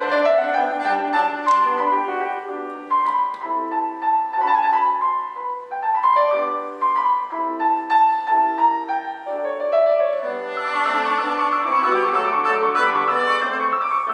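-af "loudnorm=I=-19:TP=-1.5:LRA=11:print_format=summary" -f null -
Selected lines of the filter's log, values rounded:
Input Integrated:    -19.6 LUFS
Input True Peak:      -5.2 dBTP
Input LRA:             2.0 LU
Input Threshold:     -29.7 LUFS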